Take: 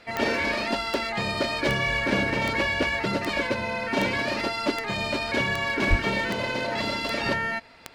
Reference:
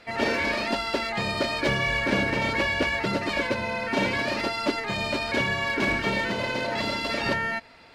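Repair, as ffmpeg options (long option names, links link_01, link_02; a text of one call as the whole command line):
ffmpeg -i in.wav -filter_complex "[0:a]adeclick=threshold=4,asplit=3[link_01][link_02][link_03];[link_01]afade=type=out:start_time=5.89:duration=0.02[link_04];[link_02]highpass=frequency=140:width=0.5412,highpass=frequency=140:width=1.3066,afade=type=in:start_time=5.89:duration=0.02,afade=type=out:start_time=6.01:duration=0.02[link_05];[link_03]afade=type=in:start_time=6.01:duration=0.02[link_06];[link_04][link_05][link_06]amix=inputs=3:normalize=0" out.wav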